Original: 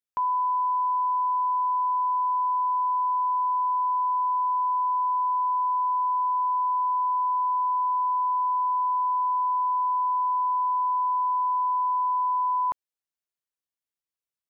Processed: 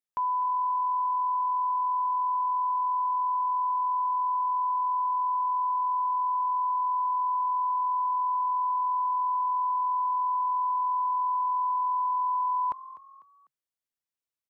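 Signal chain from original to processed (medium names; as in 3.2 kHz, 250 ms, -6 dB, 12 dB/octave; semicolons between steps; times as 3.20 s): frequency-shifting echo 249 ms, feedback 39%, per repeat +43 Hz, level -17 dB; trim -2.5 dB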